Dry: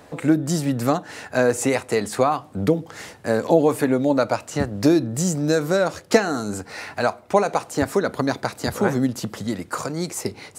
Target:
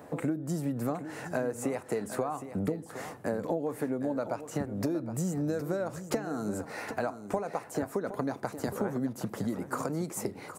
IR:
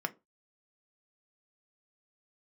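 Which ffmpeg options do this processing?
-af "highpass=110,equalizer=f=4100:t=o:w=2.3:g=-12,acompressor=threshold=0.0355:ratio=6,aecho=1:1:765:0.266"

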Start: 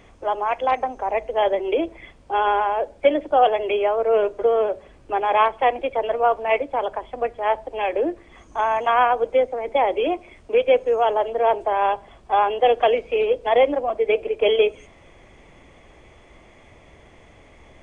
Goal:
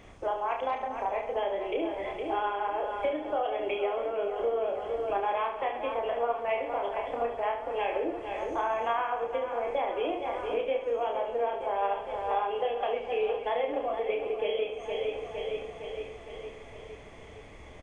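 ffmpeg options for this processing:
-filter_complex "[0:a]asplit=2[s0][s1];[s1]aecho=0:1:461|922|1383|1844|2305|2766|3227:0.237|0.14|0.0825|0.0487|0.0287|0.017|0.01[s2];[s0][s2]amix=inputs=2:normalize=0,acompressor=threshold=0.0447:ratio=6,asplit=2[s3][s4];[s4]aecho=0:1:30|72|130.8|213.1|328.4:0.631|0.398|0.251|0.158|0.1[s5];[s3][s5]amix=inputs=2:normalize=0,volume=0.75"

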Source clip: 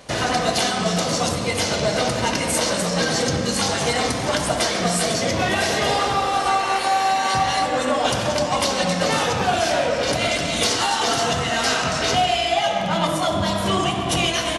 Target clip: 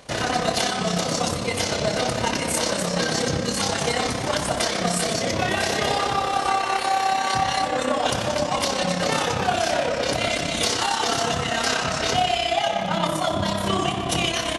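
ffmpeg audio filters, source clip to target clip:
-af "tremolo=f=33:d=0.519"

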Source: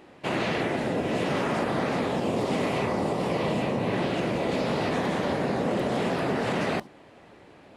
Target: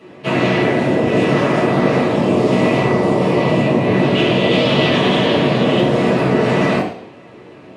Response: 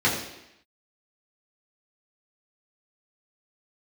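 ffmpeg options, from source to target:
-filter_complex "[0:a]asettb=1/sr,asplit=3[s0][s1][s2];[s0]atrim=end=4.154[s3];[s1]atrim=start=4.15:end=5.81,asetpts=PTS-STARTPTS,afade=t=in:d=0.004:c=qsin,afade=t=out:st=1.656:d=0.004:c=qsin,equalizer=f=3200:w=2.2:g=13.5[s4];[s2]atrim=start=5.806[s5];[s3][s4]acrossfade=d=0.004:c1=hsin:c2=qsin[s6];[s6][s5]acrossfade=d=0.004:c1=qsin:c2=hsin[s7];[1:a]atrim=start_sample=2205,asetrate=57330,aresample=44100[s8];[s7][s8]afir=irnorm=-1:irlink=0,volume=0.631"

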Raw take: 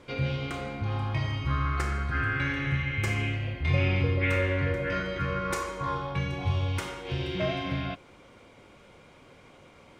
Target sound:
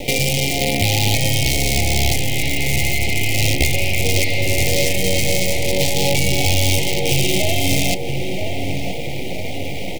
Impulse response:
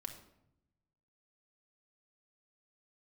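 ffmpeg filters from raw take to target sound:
-filter_complex "[0:a]apsyclip=33.5,equalizer=f=2900:t=o:w=1.3:g=5.5,acompressor=threshold=0.178:ratio=3,crystalizer=i=1.5:c=0,aeval=exprs='4.22*(cos(1*acos(clip(val(0)/4.22,-1,1)))-cos(1*PI/2))+1.19*(cos(7*acos(clip(val(0)/4.22,-1,1)))-cos(7*PI/2))':c=same,aemphasis=mode=reproduction:type=75kf,acrusher=bits=3:dc=4:mix=0:aa=0.000001,asuperstop=centerf=1300:order=12:qfactor=1.1,asplit=2[s0][s1];[s1]adelay=977,lowpass=f=1400:p=1,volume=0.562,asplit=2[s2][s3];[s3]adelay=977,lowpass=f=1400:p=1,volume=0.5,asplit=2[s4][s5];[s5]adelay=977,lowpass=f=1400:p=1,volume=0.5,asplit=2[s6][s7];[s7]adelay=977,lowpass=f=1400:p=1,volume=0.5,asplit=2[s8][s9];[s9]adelay=977,lowpass=f=1400:p=1,volume=0.5,asplit=2[s10][s11];[s11]adelay=977,lowpass=f=1400:p=1,volume=0.5[s12];[s0][s2][s4][s6][s8][s10][s12]amix=inputs=7:normalize=0,volume=0.891"

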